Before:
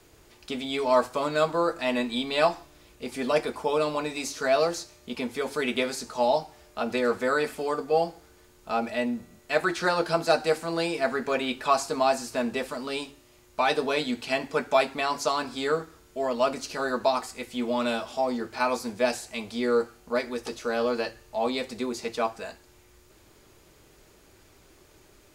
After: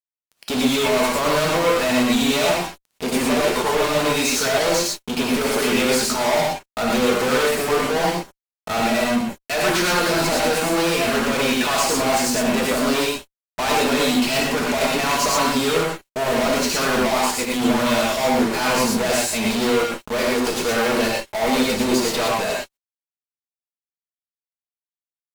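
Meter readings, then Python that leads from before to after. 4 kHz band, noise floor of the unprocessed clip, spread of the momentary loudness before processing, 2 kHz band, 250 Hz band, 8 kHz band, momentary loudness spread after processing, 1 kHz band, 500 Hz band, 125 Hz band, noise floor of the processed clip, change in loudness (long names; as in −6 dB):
+11.5 dB, −57 dBFS, 9 LU, +9.0 dB, +10.5 dB, +16.0 dB, 6 LU, +6.0 dB, +6.0 dB, +12.0 dB, below −85 dBFS, +8.0 dB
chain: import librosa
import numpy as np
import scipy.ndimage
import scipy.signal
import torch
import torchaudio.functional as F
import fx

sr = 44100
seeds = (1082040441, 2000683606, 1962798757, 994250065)

y = fx.fuzz(x, sr, gain_db=44.0, gate_db=-43.0)
y = fx.rev_gated(y, sr, seeds[0], gate_ms=140, shape='rising', drr_db=-2.0)
y = y * librosa.db_to_amplitude(-8.0)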